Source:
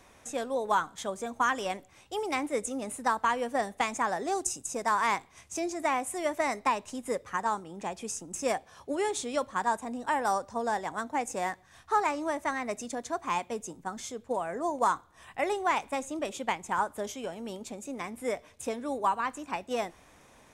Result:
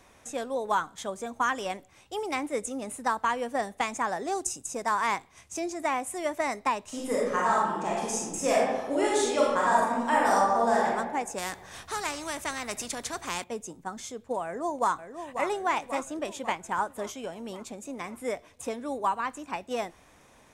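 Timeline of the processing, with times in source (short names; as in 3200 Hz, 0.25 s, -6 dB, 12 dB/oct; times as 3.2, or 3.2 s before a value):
6.87–10.86 reverb throw, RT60 1.2 s, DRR -5.5 dB
11.38–13.44 spectral compressor 2:1
14.44–15.46 echo throw 0.54 s, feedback 60%, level -8.5 dB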